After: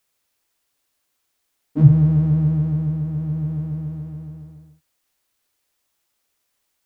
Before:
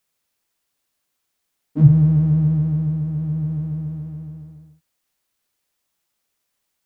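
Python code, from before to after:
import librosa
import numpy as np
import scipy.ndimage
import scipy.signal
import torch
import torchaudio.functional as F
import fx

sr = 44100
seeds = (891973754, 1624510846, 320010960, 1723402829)

y = fx.peak_eq(x, sr, hz=180.0, db=-8.5, octaves=0.35)
y = y * librosa.db_to_amplitude(2.5)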